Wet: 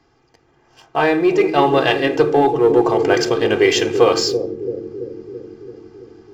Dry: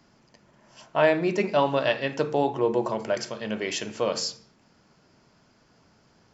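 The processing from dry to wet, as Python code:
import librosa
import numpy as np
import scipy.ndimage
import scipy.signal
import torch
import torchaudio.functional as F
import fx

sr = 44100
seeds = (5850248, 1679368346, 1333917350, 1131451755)

y = fx.lowpass(x, sr, hz=3100.0, slope=6)
y = y + 0.86 * np.pad(y, (int(2.5 * sr / 1000.0), 0))[:len(y)]
y = fx.leveller(y, sr, passes=1)
y = fx.rider(y, sr, range_db=4, speed_s=0.5)
y = fx.echo_bbd(y, sr, ms=333, stages=1024, feedback_pct=72, wet_db=-6.5)
y = y * librosa.db_to_amplitude(6.0)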